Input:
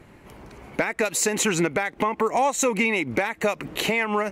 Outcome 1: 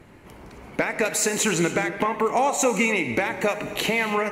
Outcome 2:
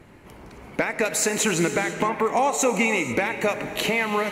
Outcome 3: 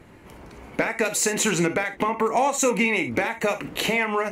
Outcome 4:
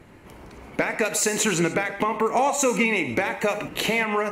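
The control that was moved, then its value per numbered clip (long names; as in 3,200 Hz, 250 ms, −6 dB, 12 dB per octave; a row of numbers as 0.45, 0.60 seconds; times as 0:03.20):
reverb whose tail is shaped and stops, gate: 310, 520, 90, 170 milliseconds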